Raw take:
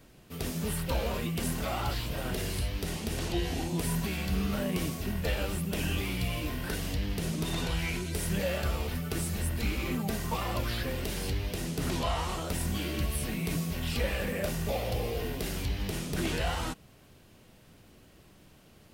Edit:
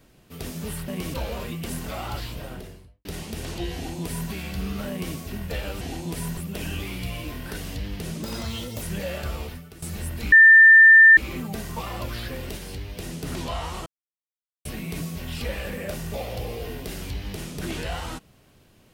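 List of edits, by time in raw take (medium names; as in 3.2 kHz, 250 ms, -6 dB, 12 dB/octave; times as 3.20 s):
1.98–2.79 s: studio fade out
3.48–4.04 s: copy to 5.55 s
4.64–4.90 s: copy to 0.88 s
7.41–8.22 s: speed 137%
8.84–9.22 s: fade out quadratic, to -14 dB
9.72 s: add tone 1.79 kHz -7.5 dBFS 0.85 s
11.12–11.52 s: gain -3 dB
12.41–13.20 s: mute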